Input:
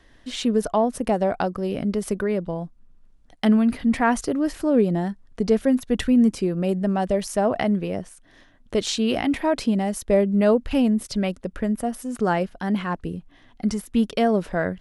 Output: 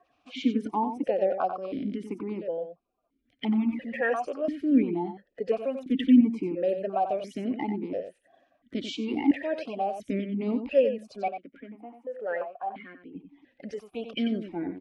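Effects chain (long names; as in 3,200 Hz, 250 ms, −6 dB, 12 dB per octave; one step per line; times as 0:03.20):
spectral magnitudes quantised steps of 30 dB
0:11.28–0:13.15: three-way crossover with the lows and the highs turned down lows −15 dB, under 530 Hz, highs −19 dB, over 2,100 Hz
single-tap delay 92 ms −8.5 dB
formant filter that steps through the vowels 2.9 Hz
level +5.5 dB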